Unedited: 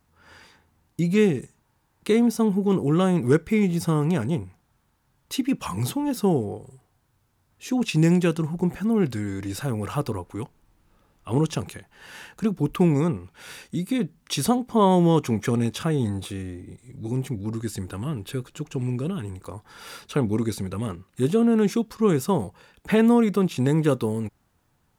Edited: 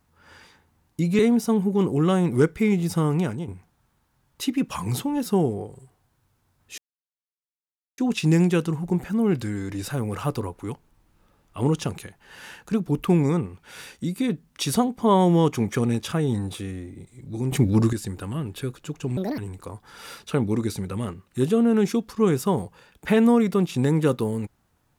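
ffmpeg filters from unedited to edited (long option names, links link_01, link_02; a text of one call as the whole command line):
ffmpeg -i in.wav -filter_complex "[0:a]asplit=8[link_01][link_02][link_03][link_04][link_05][link_06][link_07][link_08];[link_01]atrim=end=1.192[link_09];[link_02]atrim=start=2.098:end=4.39,asetpts=PTS-STARTPTS,afade=type=out:start_time=1.992:duration=0.3:silence=0.316228[link_10];[link_03]atrim=start=4.39:end=7.69,asetpts=PTS-STARTPTS,afade=type=in:duration=0.004:curve=hsin:silence=0.316228,afade=type=out:start_time=3.296:duration=0.004:curve=hsin,apad=pad_dur=1.2[link_11];[link_04]atrim=start=7.69:end=17.232,asetpts=PTS-STARTPTS,afade=type=in:duration=0.004:curve=hsin[link_12];[link_05]atrim=start=17.228:end=17.642,asetpts=PTS-STARTPTS,volume=10.5dB[link_13];[link_06]atrim=start=17.638:end=18.884[link_14];[link_07]atrim=start=18.88:end=19.2,asetpts=PTS-STARTPTS,asetrate=67032,aresample=44100,atrim=end_sample=9284,asetpts=PTS-STARTPTS[link_15];[link_08]atrim=start=19.196[link_16];[link_10][link_11][link_12]concat=n=3:v=0:a=1[link_17];[link_09][link_17]acrossfade=duration=0.004:curve1=hsin:curve2=hsin[link_18];[link_18][link_13]acrossfade=duration=0.004:curve1=hsin:curve2=hsin[link_19];[link_19][link_14]acrossfade=duration=0.004:curve1=hsin:curve2=hsin[link_20];[link_20][link_15]acrossfade=duration=0.004:curve1=hsin:curve2=hsin[link_21];[link_21][link_16]acrossfade=duration=0.004:curve1=hsin:curve2=hsin" out.wav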